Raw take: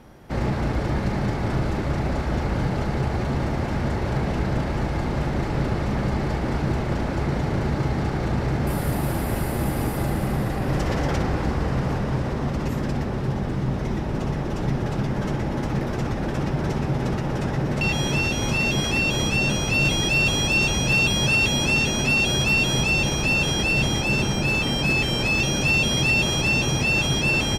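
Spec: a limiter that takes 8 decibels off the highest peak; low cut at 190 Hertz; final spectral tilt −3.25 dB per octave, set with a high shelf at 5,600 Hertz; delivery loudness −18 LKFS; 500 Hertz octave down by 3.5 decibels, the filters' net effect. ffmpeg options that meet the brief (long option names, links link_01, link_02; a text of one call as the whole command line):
ffmpeg -i in.wav -af "highpass=190,equalizer=frequency=500:width_type=o:gain=-4.5,highshelf=frequency=5600:gain=8,volume=8.5dB,alimiter=limit=-9.5dB:level=0:latency=1" out.wav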